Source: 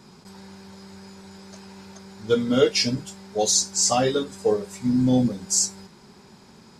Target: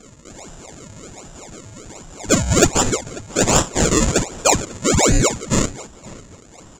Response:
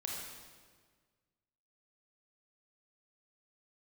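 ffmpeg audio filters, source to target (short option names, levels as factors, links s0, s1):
-filter_complex "[0:a]afftfilt=real='real(if(lt(b,920),b+92*(1-2*mod(floor(b/92),2)),b),0)':imag='imag(if(lt(b,920),b+92*(1-2*mod(floor(b/92),2)),b),0)':win_size=2048:overlap=0.75,bandreject=f=46.95:t=h:w=4,bandreject=f=93.9:t=h:w=4,acrusher=samples=39:mix=1:aa=0.000001:lfo=1:lforange=39:lforate=1.3,lowpass=f=7100:t=q:w=11,asplit=2[s0][s1];[s1]adelay=543,lowpass=f=4900:p=1,volume=0.0891,asplit=2[s2][s3];[s3]adelay=543,lowpass=f=4900:p=1,volume=0.31[s4];[s0][s2][s4]amix=inputs=3:normalize=0,acontrast=38,volume=0.891"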